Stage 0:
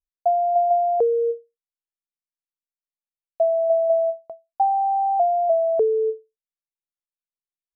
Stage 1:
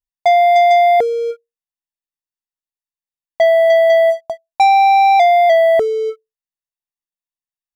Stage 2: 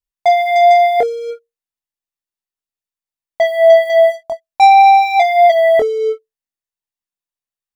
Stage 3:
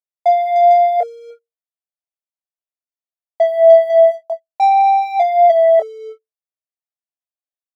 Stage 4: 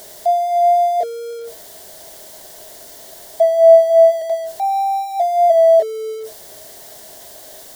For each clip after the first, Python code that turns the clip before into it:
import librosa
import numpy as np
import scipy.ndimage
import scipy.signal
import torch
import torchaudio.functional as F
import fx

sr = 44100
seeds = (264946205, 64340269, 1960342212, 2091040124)

y1 = x + 0.72 * np.pad(x, (int(1.1 * sr / 1000.0), 0))[:len(x)]
y1 = fx.leveller(y1, sr, passes=3)
y1 = F.gain(torch.from_numpy(y1), 1.5).numpy()
y2 = fx.chorus_voices(y1, sr, voices=6, hz=0.36, base_ms=23, depth_ms=2.6, mix_pct=35)
y2 = F.gain(torch.from_numpy(y2), 3.5).numpy()
y3 = fx.highpass_res(y2, sr, hz=640.0, q=4.9)
y3 = F.gain(torch.from_numpy(y3), -13.5).numpy()
y4 = y3 + 0.5 * 10.0 ** (-17.0 / 20.0) * np.sign(y3)
y4 = fx.graphic_eq_31(y4, sr, hz=(400, 630, 1250, 2500), db=(9, 11, -10, -12))
y4 = F.gain(torch.from_numpy(y4), -10.5).numpy()